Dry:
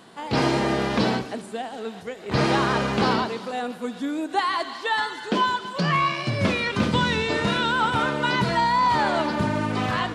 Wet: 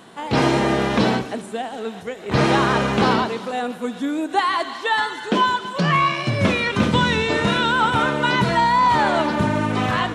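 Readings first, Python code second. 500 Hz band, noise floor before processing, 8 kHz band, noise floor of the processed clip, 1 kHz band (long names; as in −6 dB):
+4.0 dB, −40 dBFS, +3.5 dB, −36 dBFS, +4.0 dB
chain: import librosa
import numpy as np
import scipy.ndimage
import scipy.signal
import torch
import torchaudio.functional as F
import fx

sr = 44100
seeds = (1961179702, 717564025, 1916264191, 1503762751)

y = fx.peak_eq(x, sr, hz=4700.0, db=-7.0, octaves=0.23)
y = y * 10.0 ** (4.0 / 20.0)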